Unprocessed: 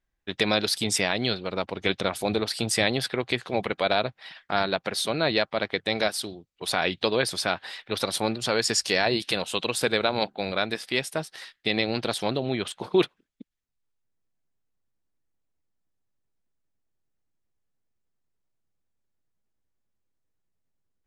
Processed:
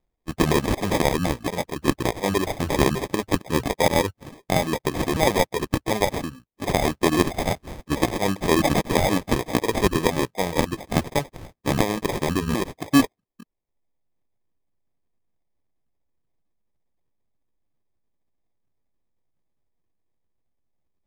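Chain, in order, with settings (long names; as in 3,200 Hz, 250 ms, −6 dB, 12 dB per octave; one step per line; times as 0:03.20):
pitch shifter swept by a sawtooth −9 semitones, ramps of 738 ms
reverb reduction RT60 0.51 s
decimation without filtering 31×
level +5.5 dB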